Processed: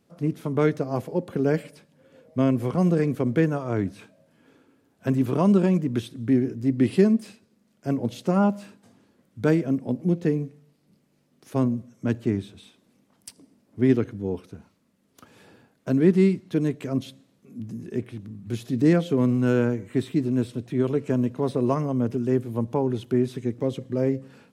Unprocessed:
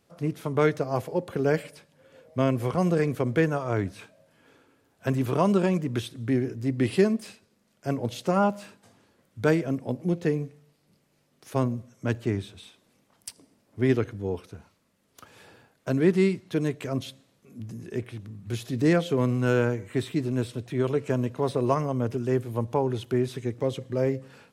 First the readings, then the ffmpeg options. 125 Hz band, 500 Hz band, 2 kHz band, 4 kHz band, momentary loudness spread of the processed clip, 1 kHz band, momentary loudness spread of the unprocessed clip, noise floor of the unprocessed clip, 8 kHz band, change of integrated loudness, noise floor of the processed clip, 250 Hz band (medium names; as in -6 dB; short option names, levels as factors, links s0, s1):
+2.0 dB, +0.5 dB, -3.0 dB, -3.0 dB, 12 LU, -2.0 dB, 12 LU, -68 dBFS, no reading, +2.5 dB, -66 dBFS, +4.5 dB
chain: -af "equalizer=f=230:w=0.93:g=9,volume=0.708"